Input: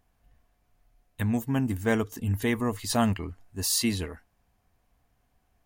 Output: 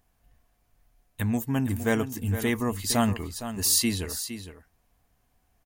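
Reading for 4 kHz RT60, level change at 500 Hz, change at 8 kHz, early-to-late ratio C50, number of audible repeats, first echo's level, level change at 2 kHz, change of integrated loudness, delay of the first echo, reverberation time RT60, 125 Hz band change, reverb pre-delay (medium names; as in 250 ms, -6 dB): no reverb, +0.5 dB, +4.5 dB, no reverb, 1, -11.0 dB, +1.0 dB, +1.0 dB, 462 ms, no reverb, +0.5 dB, no reverb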